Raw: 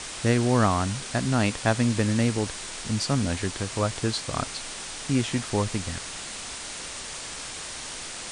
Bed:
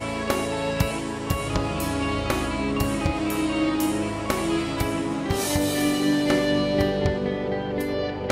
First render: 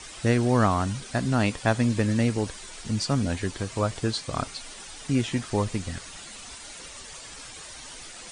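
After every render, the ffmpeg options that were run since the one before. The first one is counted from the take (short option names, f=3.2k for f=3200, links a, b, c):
-af "afftdn=nr=10:nf=-37"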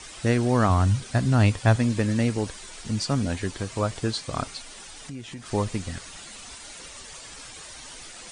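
-filter_complex "[0:a]asettb=1/sr,asplit=3[a][b][c];[a]atrim=end=0.694[d];[b]atrim=start=0.69:end=1.76,asetpts=PTS-STARTPTS,afade=t=in:d=0.004:c=qsin,afade=t=out:st=1.066:d=0.004:c=qsin,equalizer=f=100:t=o:w=0.73:g=11[e];[c]atrim=start=1.756[f];[d][e]acrossfade=d=0.004:c1=hsin:c2=qsin[g];[g][f]acrossfade=d=0.004:c1=qsin:c2=hsin,asettb=1/sr,asplit=3[h][i][j];[h]atrim=end=4.614[k];[i]atrim=start=4.61:end=5.46,asetpts=PTS-STARTPTS,afade=t=in:d=0.004:c=qsin,afade=t=out:st=0.846:d=0.004:c=qsin,acompressor=threshold=-38dB:ratio=3:attack=3.2:release=140:knee=1:detection=peak[l];[j]atrim=start=5.456[m];[k][l]acrossfade=d=0.004:c1=hsin:c2=qsin[n];[n][m]acrossfade=d=0.004:c1=qsin:c2=hsin"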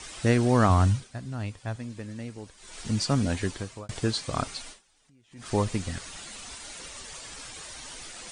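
-filter_complex "[0:a]asplit=6[a][b][c][d][e][f];[a]atrim=end=1.09,asetpts=PTS-STARTPTS,afade=t=out:st=0.85:d=0.24:silence=0.188365[g];[b]atrim=start=1.09:end=2.57,asetpts=PTS-STARTPTS,volume=-14.5dB[h];[c]atrim=start=2.57:end=3.89,asetpts=PTS-STARTPTS,afade=t=in:d=0.24:silence=0.188365,afade=t=out:st=0.89:d=0.43[i];[d]atrim=start=3.89:end=4.83,asetpts=PTS-STARTPTS,afade=t=in:d=0.004:c=hsin,afade=t=out:st=0.8:d=0.14:c=qua:silence=0.0668344[j];[e]atrim=start=4.83:end=5.28,asetpts=PTS-STARTPTS,volume=-23.5dB[k];[f]atrim=start=5.28,asetpts=PTS-STARTPTS,afade=t=in:d=0.14:c=qua:silence=0.0668344[l];[g][h][i][j][k][l]concat=n=6:v=0:a=1"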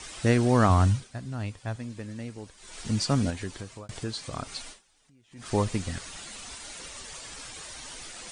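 -filter_complex "[0:a]asettb=1/sr,asplit=3[a][b][c];[a]atrim=end=3.304[d];[b]atrim=start=3.3:end=4.52,asetpts=PTS-STARTPTS,afade=t=in:d=0.004:c=qsin,afade=t=out:st=1.216:d=0.004:c=qsin,acompressor=threshold=-40dB:ratio=1.5:attack=3.2:release=140:knee=1:detection=peak[e];[c]atrim=start=4.516[f];[d][e]acrossfade=d=0.004:c1=hsin:c2=qsin[g];[g][f]acrossfade=d=0.004:c1=qsin:c2=hsin"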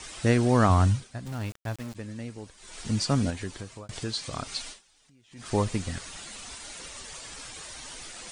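-filter_complex "[0:a]asplit=3[a][b][c];[a]afade=t=out:st=1.25:d=0.02[d];[b]aeval=exprs='val(0)*gte(abs(val(0)),0.0112)':c=same,afade=t=in:st=1.25:d=0.02,afade=t=out:st=1.94:d=0.02[e];[c]afade=t=in:st=1.94:d=0.02[f];[d][e][f]amix=inputs=3:normalize=0,asettb=1/sr,asplit=3[g][h][i];[g]atrim=end=3.934[j];[h]atrim=start=3.93:end=5.42,asetpts=PTS-STARTPTS,afade=t=in:d=0.004:c=qsin,afade=t=out:st=1.486:d=0.004:c=qsin,equalizer=f=4.4k:t=o:w=2.1:g=4.5[k];[i]atrim=start=5.416[l];[j][k]acrossfade=d=0.004:c1=hsin:c2=qsin[m];[m][l]acrossfade=d=0.004:c1=qsin:c2=hsin"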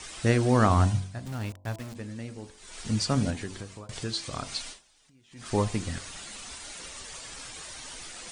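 -af "bandreject=f=47.61:t=h:w=4,bandreject=f=95.22:t=h:w=4,bandreject=f=142.83:t=h:w=4,bandreject=f=190.44:t=h:w=4,bandreject=f=238.05:t=h:w=4,bandreject=f=285.66:t=h:w=4,bandreject=f=333.27:t=h:w=4,bandreject=f=380.88:t=h:w=4,bandreject=f=428.49:t=h:w=4,bandreject=f=476.1:t=h:w=4,bandreject=f=523.71:t=h:w=4,bandreject=f=571.32:t=h:w=4,bandreject=f=618.93:t=h:w=4,bandreject=f=666.54:t=h:w=4,bandreject=f=714.15:t=h:w=4,bandreject=f=761.76:t=h:w=4,bandreject=f=809.37:t=h:w=4,bandreject=f=856.98:t=h:w=4,bandreject=f=904.59:t=h:w=4,bandreject=f=952.2:t=h:w=4,bandreject=f=999.81:t=h:w=4,bandreject=f=1.04742k:t=h:w=4"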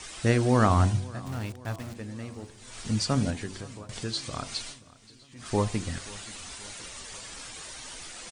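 -af "aecho=1:1:530|1060|1590|2120:0.0841|0.0488|0.0283|0.0164"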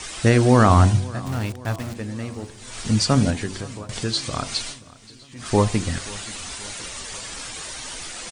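-af "volume=8dB,alimiter=limit=-3dB:level=0:latency=1"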